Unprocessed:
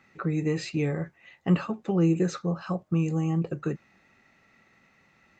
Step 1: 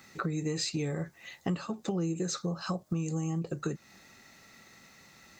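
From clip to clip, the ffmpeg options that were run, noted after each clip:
-af "aexciter=amount=2.6:drive=8.5:freq=3.7k,acompressor=threshold=-35dB:ratio=5,volume=4.5dB"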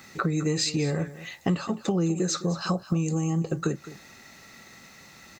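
-af "aecho=1:1:210:0.158,volume=6.5dB"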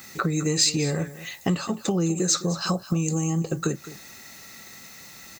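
-af "aemphasis=mode=production:type=50kf,volume=1dB"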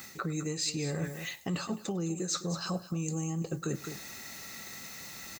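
-af "areverse,acompressor=threshold=-31dB:ratio=6,areverse,aecho=1:1:101:0.0794"

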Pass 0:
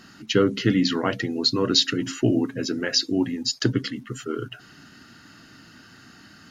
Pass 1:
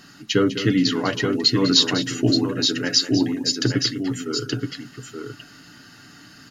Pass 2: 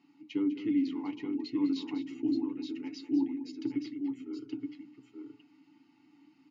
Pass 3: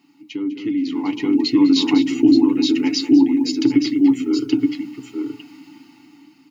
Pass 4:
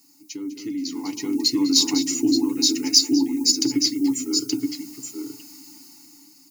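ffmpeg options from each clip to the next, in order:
-filter_complex "[0:a]highshelf=f=5.2k:g=5.5,aecho=1:1:6.9:0.37,asplit=2[a][b];[b]aecho=0:1:201|875:0.237|0.531[c];[a][c]amix=inputs=2:normalize=0"
-filter_complex "[0:a]asplit=3[a][b][c];[a]bandpass=f=300:t=q:w=8,volume=0dB[d];[b]bandpass=f=870:t=q:w=8,volume=-6dB[e];[c]bandpass=f=2.24k:t=q:w=8,volume=-9dB[f];[d][e][f]amix=inputs=3:normalize=0,bandreject=f=60:t=h:w=6,bandreject=f=120:t=h:w=6,bandreject=f=180:t=h:w=6,bandreject=f=240:t=h:w=6,bandreject=f=300:t=h:w=6,bandreject=f=360:t=h:w=6,bandreject=f=420:t=h:w=6,volume=-4.5dB"
-af "highshelf=f=5k:g=11.5,alimiter=level_in=1dB:limit=-24dB:level=0:latency=1:release=190,volume=-1dB,dynaudnorm=f=360:g=7:m=13dB,volume=7.5dB"
-af "aexciter=amount=9.5:drive=8.7:freq=4.8k,volume=-7.5dB"

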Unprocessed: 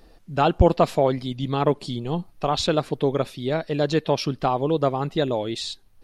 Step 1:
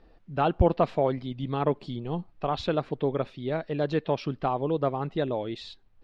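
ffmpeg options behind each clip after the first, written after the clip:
-af "lowpass=2.9k,volume=-5dB"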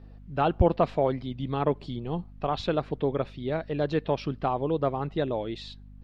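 -af "aeval=exprs='val(0)+0.00501*(sin(2*PI*50*n/s)+sin(2*PI*2*50*n/s)/2+sin(2*PI*3*50*n/s)/3+sin(2*PI*4*50*n/s)/4+sin(2*PI*5*50*n/s)/5)':c=same"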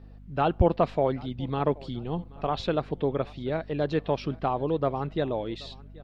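-af "aecho=1:1:780|1560|2340:0.0708|0.0269|0.0102"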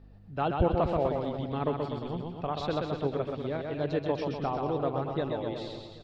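-af "aecho=1:1:130|247|352.3|447.1|532.4:0.631|0.398|0.251|0.158|0.1,volume=-5dB"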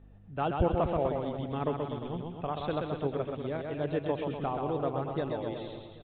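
-af "aresample=8000,aresample=44100,volume=-1.5dB"

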